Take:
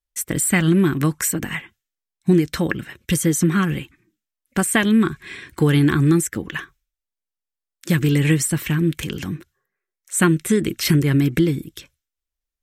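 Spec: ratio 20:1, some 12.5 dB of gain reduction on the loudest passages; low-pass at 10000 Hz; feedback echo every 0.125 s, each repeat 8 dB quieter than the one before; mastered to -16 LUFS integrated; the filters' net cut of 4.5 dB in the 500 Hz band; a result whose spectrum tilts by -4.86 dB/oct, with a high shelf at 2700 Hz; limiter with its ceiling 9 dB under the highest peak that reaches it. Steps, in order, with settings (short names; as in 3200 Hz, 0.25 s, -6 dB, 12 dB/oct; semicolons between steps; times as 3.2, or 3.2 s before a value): LPF 10000 Hz; bell 500 Hz -7 dB; high shelf 2700 Hz -4 dB; compressor 20:1, threshold -25 dBFS; limiter -22 dBFS; feedback echo 0.125 s, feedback 40%, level -8 dB; gain +15.5 dB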